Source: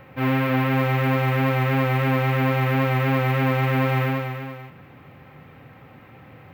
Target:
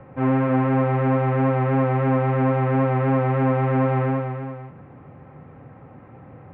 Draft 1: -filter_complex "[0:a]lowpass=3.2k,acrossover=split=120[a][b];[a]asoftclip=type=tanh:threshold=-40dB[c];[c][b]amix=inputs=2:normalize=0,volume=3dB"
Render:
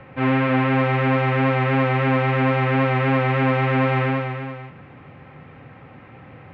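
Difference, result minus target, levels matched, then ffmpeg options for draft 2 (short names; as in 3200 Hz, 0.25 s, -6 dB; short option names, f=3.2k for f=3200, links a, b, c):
4000 Hz band +14.0 dB
-filter_complex "[0:a]lowpass=1.1k,acrossover=split=120[a][b];[a]asoftclip=type=tanh:threshold=-40dB[c];[c][b]amix=inputs=2:normalize=0,volume=3dB"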